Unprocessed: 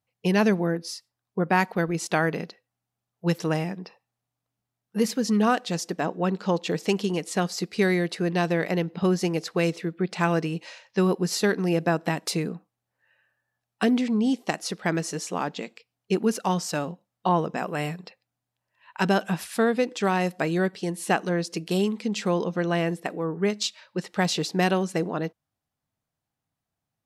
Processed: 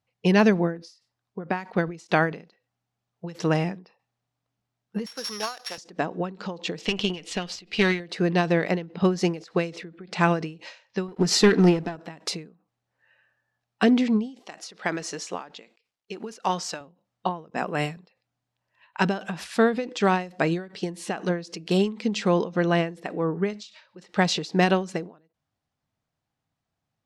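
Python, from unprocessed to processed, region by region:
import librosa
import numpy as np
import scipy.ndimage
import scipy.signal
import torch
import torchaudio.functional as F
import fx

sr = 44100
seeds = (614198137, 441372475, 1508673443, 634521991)

y = fx.chain(x, sr, fx.sample_sort(block=8),
    fx.highpass(hz=810.0, slope=12),
    fx.high_shelf(hz=10000.0, db=11.5), at=(5.06, 5.78))
y = fx.chain(y, sr, fx.peak_eq(hz=2900.0, db=13.0, octaves=0.83),
    fx.tube_stage(drive_db=14.0, bias=0.6), at=(6.79, 8.0))
y = fx.chain(y, sr, fx.notch_comb(f0_hz=550.0),
    fx.leveller(passes=2), at=(11.08, 11.96))
y = fx.chain(y, sr, fx.highpass(hz=500.0, slope=6),
    fx.quant_companded(bits=8), at=(14.39, 16.81))
y = fx.chain(y, sr, fx.high_shelf(hz=5300.0, db=5.5),
    fx.band_widen(depth_pct=100), at=(17.5, 17.97))
y = scipy.signal.sosfilt(scipy.signal.butter(2, 6200.0, 'lowpass', fs=sr, output='sos'), y)
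y = fx.end_taper(y, sr, db_per_s=150.0)
y = y * 10.0 ** (3.0 / 20.0)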